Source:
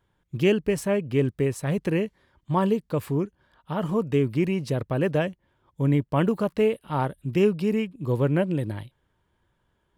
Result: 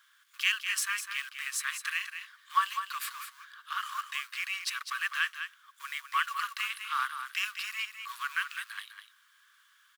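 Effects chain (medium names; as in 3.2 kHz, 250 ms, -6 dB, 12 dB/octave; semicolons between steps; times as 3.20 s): companding laws mixed up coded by mu; rippled Chebyshev high-pass 1.1 kHz, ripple 3 dB; delay 203 ms -8.5 dB; trim +6 dB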